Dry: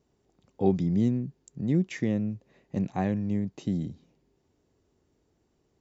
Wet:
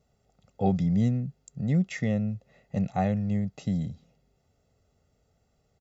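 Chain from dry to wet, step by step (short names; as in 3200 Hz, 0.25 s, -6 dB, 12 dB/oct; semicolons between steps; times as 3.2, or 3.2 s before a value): comb 1.5 ms, depth 80%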